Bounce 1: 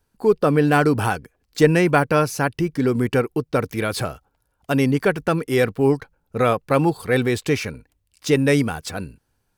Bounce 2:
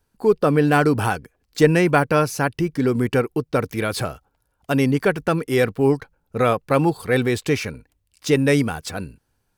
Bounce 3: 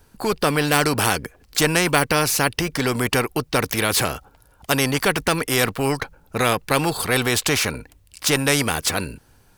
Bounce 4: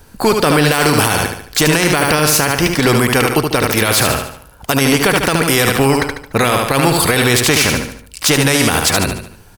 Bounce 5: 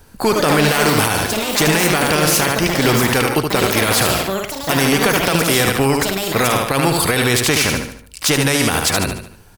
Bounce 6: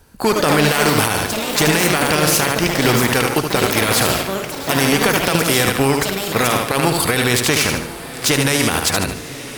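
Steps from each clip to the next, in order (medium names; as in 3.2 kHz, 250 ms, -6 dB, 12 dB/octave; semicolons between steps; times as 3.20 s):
no audible change
spectrum-flattening compressor 2:1
feedback delay 73 ms, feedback 43%, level -6.5 dB; loudness maximiser +11.5 dB; trim -1 dB
ever faster or slower copies 185 ms, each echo +6 st, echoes 2, each echo -6 dB; trim -3 dB
Chebyshev shaper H 7 -27 dB, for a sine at -2 dBFS; echo that smears into a reverb 1047 ms, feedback 54%, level -15 dB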